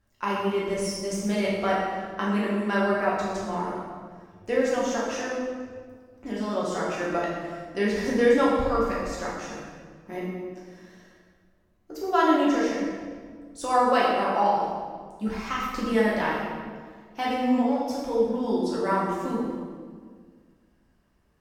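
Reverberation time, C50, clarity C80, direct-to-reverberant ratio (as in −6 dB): 1.8 s, −0.5 dB, 2.0 dB, −6.0 dB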